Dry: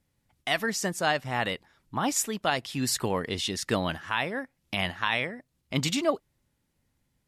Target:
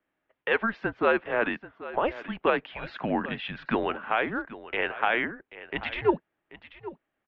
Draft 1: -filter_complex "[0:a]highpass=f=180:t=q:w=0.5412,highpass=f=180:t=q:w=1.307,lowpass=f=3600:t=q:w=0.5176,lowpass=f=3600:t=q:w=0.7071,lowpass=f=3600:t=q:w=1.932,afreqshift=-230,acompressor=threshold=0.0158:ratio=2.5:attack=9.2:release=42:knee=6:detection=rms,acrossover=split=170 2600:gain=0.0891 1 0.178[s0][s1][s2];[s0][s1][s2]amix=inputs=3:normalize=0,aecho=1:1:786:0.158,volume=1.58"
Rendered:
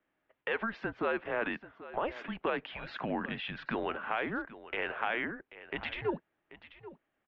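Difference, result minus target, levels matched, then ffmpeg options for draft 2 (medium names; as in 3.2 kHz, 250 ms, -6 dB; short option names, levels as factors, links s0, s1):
compression: peak gain reduction +11.5 dB
-filter_complex "[0:a]highpass=f=180:t=q:w=0.5412,highpass=f=180:t=q:w=1.307,lowpass=f=3600:t=q:w=0.5176,lowpass=f=3600:t=q:w=0.7071,lowpass=f=3600:t=q:w=1.932,afreqshift=-230,acrossover=split=170 2600:gain=0.0891 1 0.178[s0][s1][s2];[s0][s1][s2]amix=inputs=3:normalize=0,aecho=1:1:786:0.158,volume=1.58"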